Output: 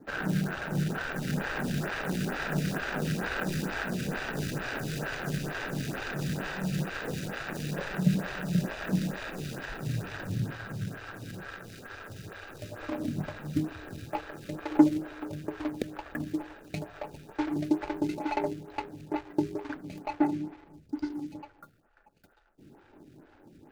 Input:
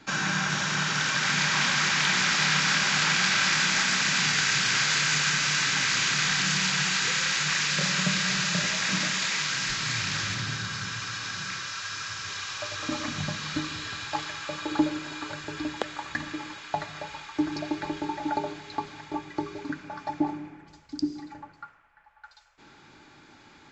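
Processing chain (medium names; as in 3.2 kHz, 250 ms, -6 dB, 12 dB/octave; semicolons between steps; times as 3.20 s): median filter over 41 samples; lamp-driven phase shifter 2.2 Hz; trim +6 dB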